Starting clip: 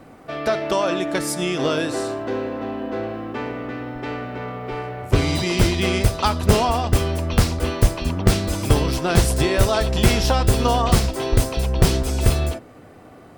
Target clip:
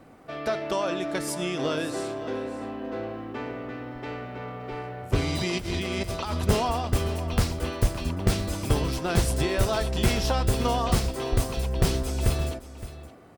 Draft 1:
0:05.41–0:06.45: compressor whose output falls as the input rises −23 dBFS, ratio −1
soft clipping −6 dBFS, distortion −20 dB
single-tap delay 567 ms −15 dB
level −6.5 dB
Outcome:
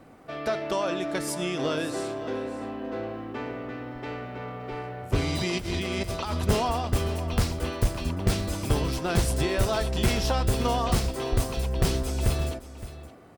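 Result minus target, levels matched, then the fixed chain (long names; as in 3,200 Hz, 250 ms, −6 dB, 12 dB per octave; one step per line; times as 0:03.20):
soft clipping: distortion +10 dB
0:05.41–0:06.45: compressor whose output falls as the input rises −23 dBFS, ratio −1
soft clipping 0 dBFS, distortion −30 dB
single-tap delay 567 ms −15 dB
level −6.5 dB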